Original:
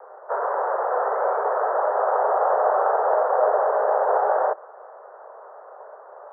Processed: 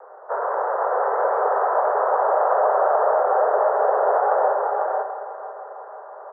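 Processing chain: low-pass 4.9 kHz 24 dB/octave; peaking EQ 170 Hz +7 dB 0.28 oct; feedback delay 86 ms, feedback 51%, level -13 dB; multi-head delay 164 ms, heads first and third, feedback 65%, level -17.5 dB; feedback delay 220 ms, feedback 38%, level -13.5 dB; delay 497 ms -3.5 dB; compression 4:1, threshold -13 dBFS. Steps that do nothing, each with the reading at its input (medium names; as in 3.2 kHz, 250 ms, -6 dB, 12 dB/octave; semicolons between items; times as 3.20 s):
low-pass 4.9 kHz: input has nothing above 1.7 kHz; peaking EQ 170 Hz: input has nothing below 340 Hz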